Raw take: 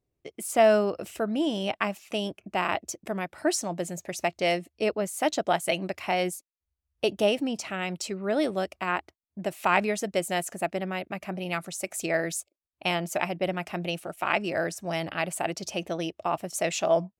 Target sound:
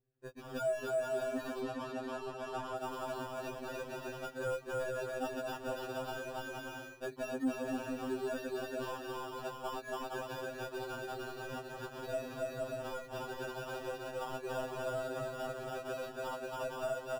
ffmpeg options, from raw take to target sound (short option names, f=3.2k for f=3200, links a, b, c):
-filter_complex "[0:a]aecho=1:1:280|462|580.3|657.2|707.2:0.631|0.398|0.251|0.158|0.1,acompressor=threshold=-27dB:ratio=6,asoftclip=type=tanh:threshold=-29dB,aemphasis=mode=reproduction:type=cd,acrusher=samples=21:mix=1:aa=0.000001,asettb=1/sr,asplit=3[a][b][c];[a]atrim=end=1.614[d];[b]atrim=start=1.61:end=2.77,asetpts=PTS-STARTPTS,afade=t=in:d=0.004:c=qsin,afade=t=out:st=1.156:d=0.004:c=qsin,adynamicsmooth=sensitivity=7:basefreq=5.2k[e];[c]atrim=start=2.766[f];[d][e]acrossfade=d=0.004:c1=hsin:c2=qsin[g];[g][f]acrossfade=d=0.004:c1=qsin:c2=hsin,highshelf=f=2.4k:g=-8,afftfilt=real='re*2.45*eq(mod(b,6),0)':imag='im*2.45*eq(mod(b,6),0)':win_size=2048:overlap=0.75,volume=-1dB"